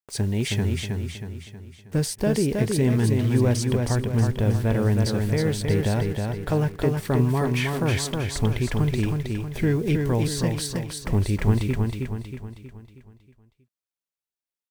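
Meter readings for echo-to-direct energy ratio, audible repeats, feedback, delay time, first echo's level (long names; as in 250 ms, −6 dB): −3.0 dB, 5, 47%, 318 ms, −4.0 dB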